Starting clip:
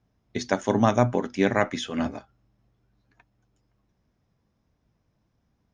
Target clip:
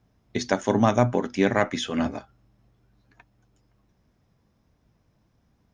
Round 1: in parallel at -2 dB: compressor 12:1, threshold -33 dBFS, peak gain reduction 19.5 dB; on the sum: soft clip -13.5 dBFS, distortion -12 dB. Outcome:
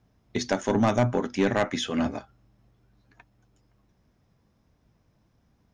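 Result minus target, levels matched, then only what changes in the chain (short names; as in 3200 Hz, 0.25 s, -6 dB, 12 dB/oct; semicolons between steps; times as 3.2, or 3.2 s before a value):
soft clip: distortion +16 dB
change: soft clip -2 dBFS, distortion -28 dB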